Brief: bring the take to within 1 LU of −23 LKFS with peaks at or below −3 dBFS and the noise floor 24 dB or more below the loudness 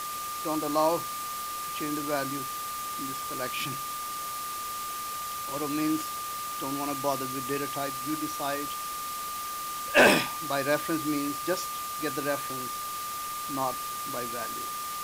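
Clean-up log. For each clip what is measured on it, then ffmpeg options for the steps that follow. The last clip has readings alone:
interfering tone 1,200 Hz; level of the tone −34 dBFS; background noise floor −35 dBFS; target noise floor −54 dBFS; integrated loudness −30.0 LKFS; sample peak −11.0 dBFS; target loudness −23.0 LKFS
→ -af "bandreject=frequency=1200:width=30"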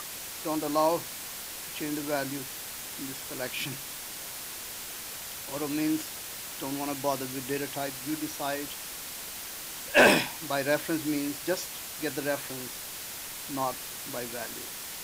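interfering tone none found; background noise floor −40 dBFS; target noise floor −55 dBFS
→ -af "afftdn=noise_reduction=15:noise_floor=-40"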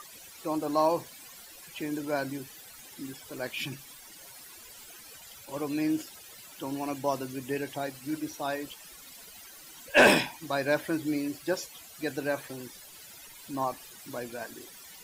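background noise floor −50 dBFS; target noise floor −55 dBFS
→ -af "afftdn=noise_reduction=6:noise_floor=-50"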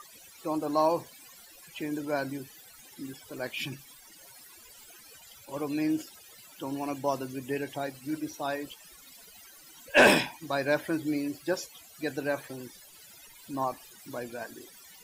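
background noise floor −53 dBFS; target noise floor −55 dBFS
→ -af "afftdn=noise_reduction=6:noise_floor=-53"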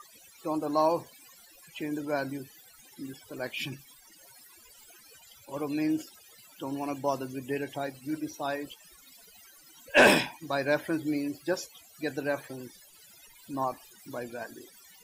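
background noise floor −56 dBFS; integrated loudness −30.5 LKFS; sample peak −11.0 dBFS; target loudness −23.0 LKFS
→ -af "volume=7.5dB"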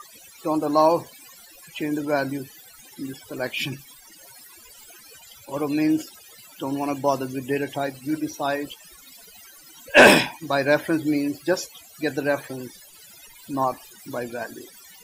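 integrated loudness −23.0 LKFS; sample peak −3.5 dBFS; background noise floor −49 dBFS

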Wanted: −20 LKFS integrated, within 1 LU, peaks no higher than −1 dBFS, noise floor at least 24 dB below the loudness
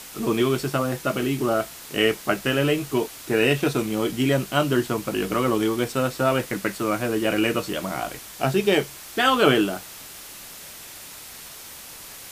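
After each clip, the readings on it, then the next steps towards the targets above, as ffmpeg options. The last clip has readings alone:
background noise floor −41 dBFS; target noise floor −47 dBFS; integrated loudness −23.0 LKFS; sample peak −3.5 dBFS; target loudness −20.0 LKFS
→ -af "afftdn=noise_reduction=6:noise_floor=-41"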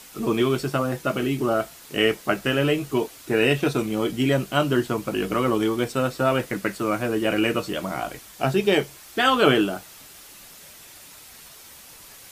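background noise floor −46 dBFS; target noise floor −48 dBFS
→ -af "afftdn=noise_reduction=6:noise_floor=-46"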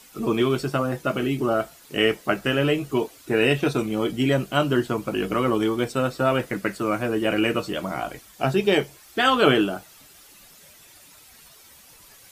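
background noise floor −51 dBFS; integrated loudness −23.5 LKFS; sample peak −3.5 dBFS; target loudness −20.0 LKFS
→ -af "volume=3.5dB,alimiter=limit=-1dB:level=0:latency=1"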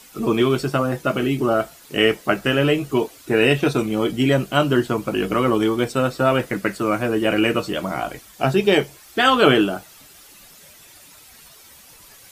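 integrated loudness −20.0 LKFS; sample peak −1.0 dBFS; background noise floor −47 dBFS

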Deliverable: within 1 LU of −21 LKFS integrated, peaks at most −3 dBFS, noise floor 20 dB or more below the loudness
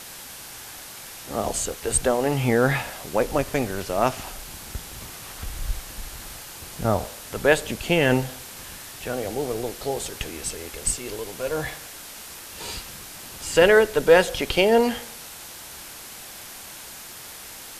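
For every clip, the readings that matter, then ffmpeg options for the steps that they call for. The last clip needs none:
background noise floor −40 dBFS; target noise floor −44 dBFS; integrated loudness −23.5 LKFS; sample peak −2.5 dBFS; target loudness −21.0 LKFS
→ -af "afftdn=noise_reduction=6:noise_floor=-40"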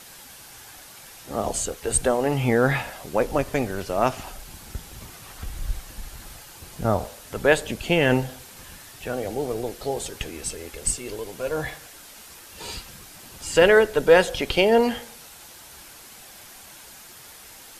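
background noise floor −45 dBFS; integrated loudness −23.5 LKFS; sample peak −2.5 dBFS; target loudness −21.0 LKFS
→ -af "volume=2.5dB,alimiter=limit=-3dB:level=0:latency=1"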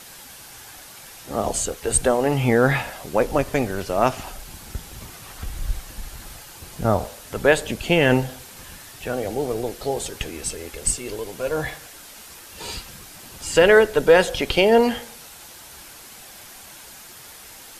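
integrated loudness −21.5 LKFS; sample peak −3.0 dBFS; background noise floor −43 dBFS

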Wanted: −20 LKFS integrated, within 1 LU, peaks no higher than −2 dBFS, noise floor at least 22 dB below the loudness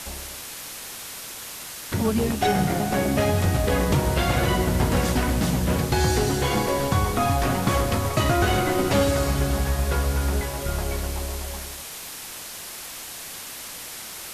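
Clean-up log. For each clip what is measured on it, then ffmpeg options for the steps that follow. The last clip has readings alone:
background noise floor −37 dBFS; target noise floor −47 dBFS; integrated loudness −24.5 LKFS; sample peak −9.5 dBFS; target loudness −20.0 LKFS
→ -af "afftdn=noise_reduction=10:noise_floor=-37"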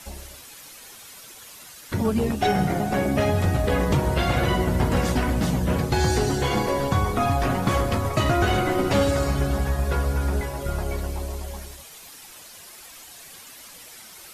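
background noise floor −44 dBFS; target noise floor −46 dBFS
→ -af "afftdn=noise_reduction=6:noise_floor=-44"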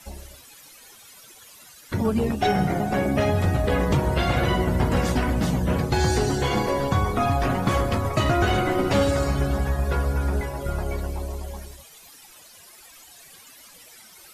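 background noise floor −49 dBFS; integrated loudness −23.5 LKFS; sample peak −10.0 dBFS; target loudness −20.0 LKFS
→ -af "volume=3.5dB"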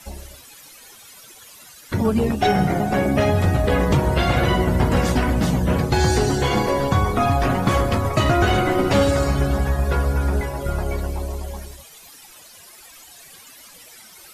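integrated loudness −20.0 LKFS; sample peak −6.5 dBFS; background noise floor −45 dBFS

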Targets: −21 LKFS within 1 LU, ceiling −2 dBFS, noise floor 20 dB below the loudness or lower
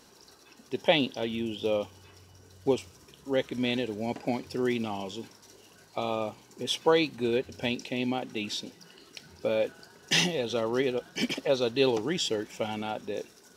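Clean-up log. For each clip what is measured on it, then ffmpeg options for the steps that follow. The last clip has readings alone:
integrated loudness −30.0 LKFS; sample peak −8.5 dBFS; target loudness −21.0 LKFS
→ -af "volume=9dB,alimiter=limit=-2dB:level=0:latency=1"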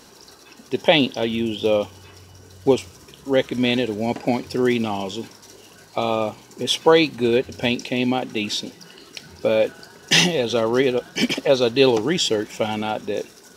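integrated loudness −21.0 LKFS; sample peak −2.0 dBFS; background noise floor −48 dBFS

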